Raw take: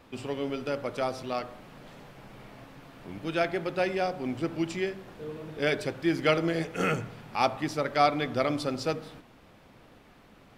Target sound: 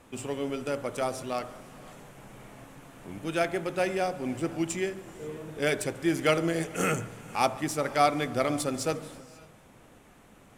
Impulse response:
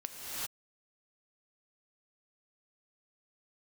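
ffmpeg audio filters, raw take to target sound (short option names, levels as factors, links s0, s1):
-filter_complex "[0:a]aexciter=amount=7.1:drive=7:freq=6700,adynamicsmooth=sensitivity=5:basefreq=6900,asplit=2[s0][s1];[1:a]atrim=start_sample=2205,adelay=142[s2];[s1][s2]afir=irnorm=-1:irlink=0,volume=0.0944[s3];[s0][s3]amix=inputs=2:normalize=0"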